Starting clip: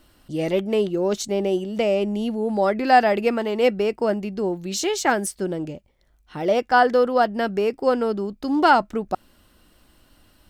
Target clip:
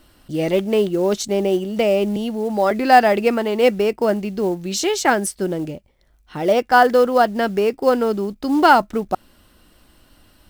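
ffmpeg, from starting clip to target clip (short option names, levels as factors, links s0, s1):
-filter_complex "[0:a]bandreject=f=6800:w=26,asettb=1/sr,asplit=3[s0][s1][s2];[s0]atrim=end=2.164[s3];[s1]atrim=start=2.16:end=2.71,asetpts=PTS-STARTPTS,afade=t=in:d=0.004:c=qsin,afade=t=out:st=0.546:d=0.004:c=qsin,acrossover=split=490[s4][s5];[s4]acompressor=threshold=0.0447:ratio=3[s6];[s6][s5]amix=inputs=2:normalize=0[s7];[s2]atrim=start=2.706[s8];[s3][s7]acrossfade=d=0.004:c1=hsin:c2=qsin[s9];[s9][s8]acrossfade=d=0.004:c1=qsin:c2=hsin,acrusher=bits=7:mode=log:mix=0:aa=0.000001,volume=1.5"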